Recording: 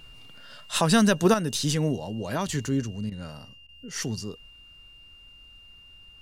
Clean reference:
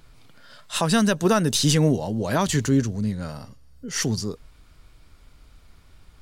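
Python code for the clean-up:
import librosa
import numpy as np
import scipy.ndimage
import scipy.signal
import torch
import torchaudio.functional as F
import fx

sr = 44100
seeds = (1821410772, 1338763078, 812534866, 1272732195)

y = fx.notch(x, sr, hz=2800.0, q=30.0)
y = fx.fix_interpolate(y, sr, at_s=(3.1, 3.67), length_ms=16.0)
y = fx.gain(y, sr, db=fx.steps((0.0, 0.0), (1.34, 6.5)))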